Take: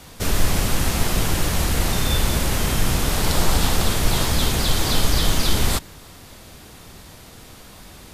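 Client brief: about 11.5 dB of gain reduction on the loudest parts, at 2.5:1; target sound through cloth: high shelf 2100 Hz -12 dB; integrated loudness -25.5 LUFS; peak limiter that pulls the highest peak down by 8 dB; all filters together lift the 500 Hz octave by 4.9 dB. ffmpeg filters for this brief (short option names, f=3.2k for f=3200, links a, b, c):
-af "equalizer=f=500:t=o:g=7,acompressor=threshold=-29dB:ratio=2.5,alimiter=limit=-22dB:level=0:latency=1,highshelf=f=2.1k:g=-12,volume=11dB"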